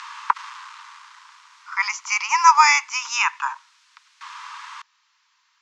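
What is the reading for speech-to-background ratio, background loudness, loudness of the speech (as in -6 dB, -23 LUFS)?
13.5 dB, -32.0 LUFS, -18.5 LUFS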